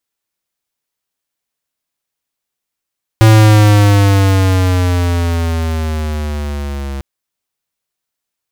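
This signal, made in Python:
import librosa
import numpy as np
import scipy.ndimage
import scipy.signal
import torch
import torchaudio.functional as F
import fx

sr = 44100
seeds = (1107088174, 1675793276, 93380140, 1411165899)

y = fx.riser_tone(sr, length_s=3.8, level_db=-5.0, wave='square', hz=111.0, rise_st=-8.5, swell_db=-17)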